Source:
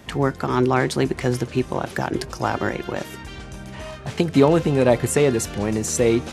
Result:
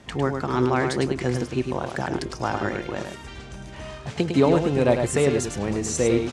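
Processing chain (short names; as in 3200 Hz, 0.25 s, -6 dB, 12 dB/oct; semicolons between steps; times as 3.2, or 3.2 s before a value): LPF 9300 Hz 24 dB/oct; echo 0.104 s -6 dB; gain -3.5 dB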